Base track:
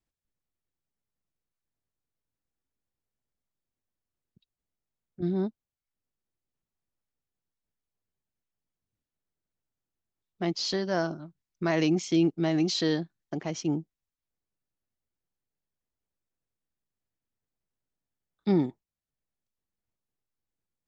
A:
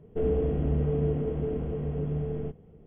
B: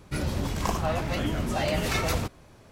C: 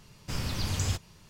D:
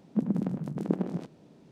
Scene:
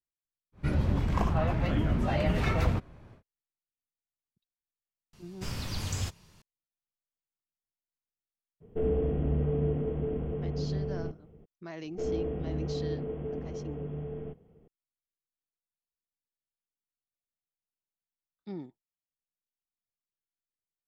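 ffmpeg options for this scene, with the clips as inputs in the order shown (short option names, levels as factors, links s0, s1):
-filter_complex "[1:a]asplit=2[s0][s1];[0:a]volume=0.158[s2];[2:a]bass=f=250:g=6,treble=f=4000:g=-15[s3];[s1]lowshelf=f=200:g=-5.5[s4];[s3]atrim=end=2.71,asetpts=PTS-STARTPTS,volume=0.708,afade=t=in:d=0.1,afade=t=out:st=2.61:d=0.1,adelay=520[s5];[3:a]atrim=end=1.29,asetpts=PTS-STARTPTS,volume=0.668,afade=t=in:d=0.004:c=hsin,afade=t=out:st=1.286:d=0.004:c=hsin,adelay=226233S[s6];[s0]atrim=end=2.86,asetpts=PTS-STARTPTS,volume=0.794,afade=t=in:d=0.02,afade=t=out:st=2.84:d=0.02,adelay=8600[s7];[s4]atrim=end=2.86,asetpts=PTS-STARTPTS,volume=0.631,afade=t=in:d=0.004:c=hsin,afade=t=out:st=2.856:d=0.004:c=hsin,adelay=11820[s8];[s2][s5][s6][s7][s8]amix=inputs=5:normalize=0"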